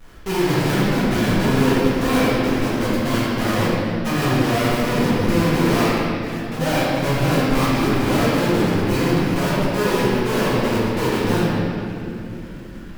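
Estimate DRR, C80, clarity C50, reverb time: -10.5 dB, -2.0 dB, -4.0 dB, 3.0 s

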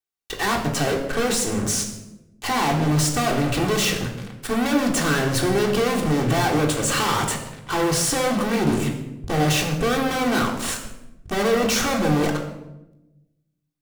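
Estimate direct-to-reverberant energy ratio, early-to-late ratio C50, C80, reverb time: -0.5 dB, 6.5 dB, 9.0 dB, 0.95 s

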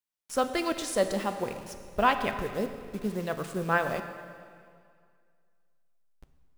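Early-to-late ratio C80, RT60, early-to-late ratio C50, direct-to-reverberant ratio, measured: 10.0 dB, 2.1 s, 9.0 dB, 7.5 dB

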